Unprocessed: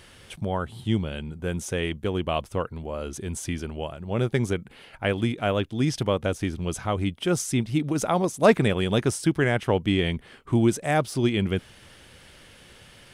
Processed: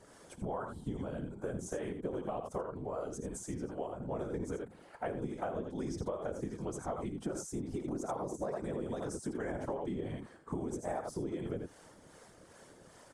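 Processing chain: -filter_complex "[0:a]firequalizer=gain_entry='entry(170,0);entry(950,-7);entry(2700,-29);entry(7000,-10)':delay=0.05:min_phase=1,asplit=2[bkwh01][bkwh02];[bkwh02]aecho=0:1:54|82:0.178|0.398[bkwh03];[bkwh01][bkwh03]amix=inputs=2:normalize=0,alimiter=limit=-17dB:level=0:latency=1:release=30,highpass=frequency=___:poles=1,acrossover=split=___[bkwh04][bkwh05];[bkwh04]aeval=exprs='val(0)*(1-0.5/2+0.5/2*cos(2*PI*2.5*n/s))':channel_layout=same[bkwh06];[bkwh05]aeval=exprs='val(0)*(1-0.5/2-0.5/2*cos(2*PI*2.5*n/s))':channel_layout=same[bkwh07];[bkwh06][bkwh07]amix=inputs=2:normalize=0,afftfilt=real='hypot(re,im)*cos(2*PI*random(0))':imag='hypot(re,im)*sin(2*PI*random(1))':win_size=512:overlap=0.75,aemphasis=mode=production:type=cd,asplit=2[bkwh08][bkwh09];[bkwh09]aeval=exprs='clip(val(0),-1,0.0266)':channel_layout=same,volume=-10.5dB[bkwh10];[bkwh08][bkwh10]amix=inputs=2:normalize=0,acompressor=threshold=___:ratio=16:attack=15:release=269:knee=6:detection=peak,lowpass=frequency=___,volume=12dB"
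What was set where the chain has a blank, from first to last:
680, 430, -46dB, 5600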